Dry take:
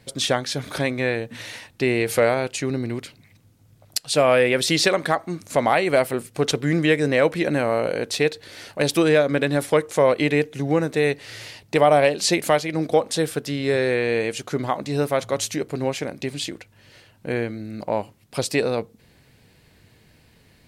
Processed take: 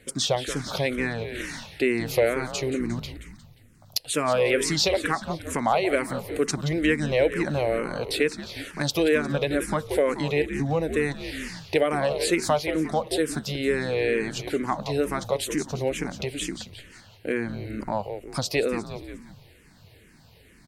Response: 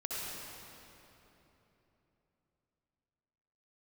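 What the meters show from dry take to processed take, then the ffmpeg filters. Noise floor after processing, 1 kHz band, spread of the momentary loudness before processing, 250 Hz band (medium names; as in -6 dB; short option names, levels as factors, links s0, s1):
-54 dBFS, -4.5 dB, 12 LU, -3.0 dB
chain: -filter_complex "[0:a]asplit=5[s0][s1][s2][s3][s4];[s1]adelay=177,afreqshift=-90,volume=0.266[s5];[s2]adelay=354,afreqshift=-180,volume=0.117[s6];[s3]adelay=531,afreqshift=-270,volume=0.0513[s7];[s4]adelay=708,afreqshift=-360,volume=0.0226[s8];[s0][s5][s6][s7][s8]amix=inputs=5:normalize=0,acompressor=threshold=0.0355:ratio=1.5,asplit=2[s9][s10];[s10]afreqshift=-2.2[s11];[s9][s11]amix=inputs=2:normalize=1,volume=1.5"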